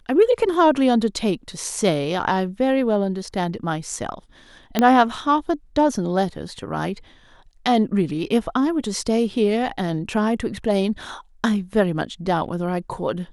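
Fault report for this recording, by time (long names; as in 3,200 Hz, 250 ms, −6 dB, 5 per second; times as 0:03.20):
0:04.79: click −5 dBFS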